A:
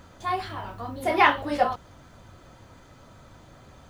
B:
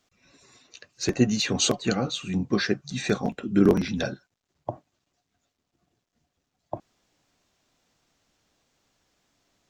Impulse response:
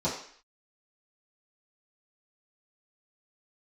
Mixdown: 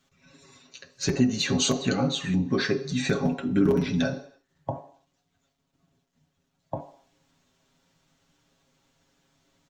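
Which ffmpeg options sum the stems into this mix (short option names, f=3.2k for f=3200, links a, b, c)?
-filter_complex "[0:a]bandpass=f=1.8k:t=q:w=18:csg=0,adelay=1000,volume=-6dB[a];[1:a]aecho=1:1:7.3:0.65,volume=0dB,asplit=3[b][c][d];[c]volume=-15dB[e];[d]apad=whole_len=215677[f];[a][f]sidechaincompress=threshold=-28dB:ratio=8:attack=16:release=891[g];[2:a]atrim=start_sample=2205[h];[e][h]afir=irnorm=-1:irlink=0[i];[g][b][i]amix=inputs=3:normalize=0,acompressor=threshold=-22dB:ratio=2"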